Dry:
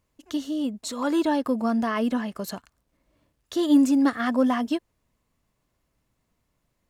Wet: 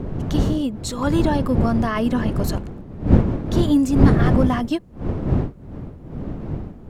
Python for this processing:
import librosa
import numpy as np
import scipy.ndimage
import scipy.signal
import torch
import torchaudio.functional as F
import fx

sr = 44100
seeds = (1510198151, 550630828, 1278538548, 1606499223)

p1 = fx.dmg_wind(x, sr, seeds[0], corner_hz=210.0, level_db=-23.0)
p2 = fx.rider(p1, sr, range_db=4, speed_s=0.5)
p3 = p1 + F.gain(torch.from_numpy(p2), 0.0).numpy()
y = F.gain(torch.from_numpy(p3), -4.0).numpy()